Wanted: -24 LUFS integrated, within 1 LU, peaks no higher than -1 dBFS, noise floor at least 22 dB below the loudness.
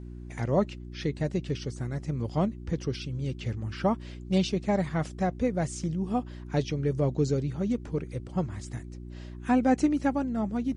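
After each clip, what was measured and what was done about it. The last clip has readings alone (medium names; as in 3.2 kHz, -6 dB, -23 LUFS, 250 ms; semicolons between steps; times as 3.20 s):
hum 60 Hz; highest harmonic 360 Hz; hum level -39 dBFS; loudness -29.5 LUFS; peak level -13.0 dBFS; loudness target -24.0 LUFS
-> de-hum 60 Hz, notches 6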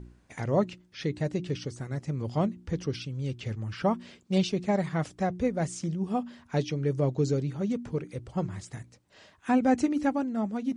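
hum not found; loudness -30.0 LUFS; peak level -13.0 dBFS; loudness target -24.0 LUFS
-> trim +6 dB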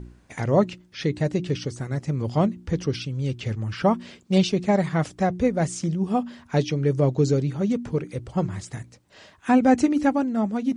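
loudness -24.0 LUFS; peak level -7.0 dBFS; noise floor -54 dBFS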